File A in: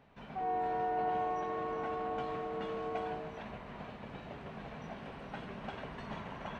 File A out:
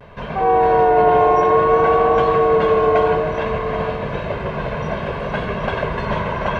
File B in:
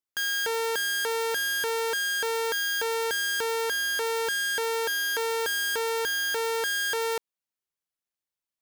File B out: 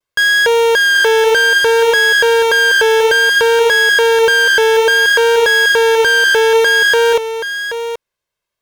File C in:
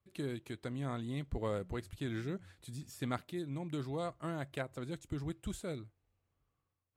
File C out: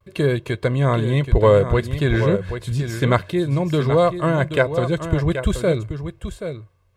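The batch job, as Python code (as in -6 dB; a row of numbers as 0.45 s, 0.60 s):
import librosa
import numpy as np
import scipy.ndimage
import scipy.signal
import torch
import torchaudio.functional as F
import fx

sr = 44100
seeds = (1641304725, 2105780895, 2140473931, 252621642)

p1 = fx.high_shelf(x, sr, hz=4900.0, db=-12.0)
p2 = p1 + 0.57 * np.pad(p1, (int(1.9 * sr / 1000.0), 0))[:len(p1)]
p3 = fx.vibrato(p2, sr, rate_hz=0.6, depth_cents=38.0)
p4 = p3 + fx.echo_single(p3, sr, ms=779, db=-9.5, dry=0)
y = p4 * 10.0 ** (-3 / 20.0) / np.max(np.abs(p4))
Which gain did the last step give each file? +21.0 dB, +15.5 dB, +20.5 dB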